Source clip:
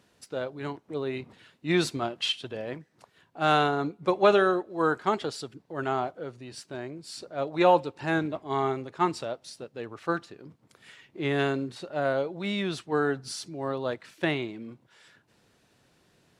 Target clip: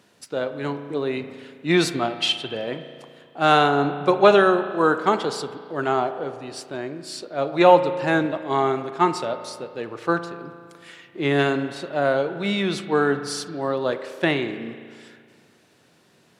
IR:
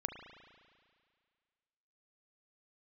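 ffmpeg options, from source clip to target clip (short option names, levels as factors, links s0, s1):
-filter_complex "[0:a]highpass=130,asplit=2[s0][s1];[1:a]atrim=start_sample=2205[s2];[s1][s2]afir=irnorm=-1:irlink=0,volume=1.19[s3];[s0][s3]amix=inputs=2:normalize=0"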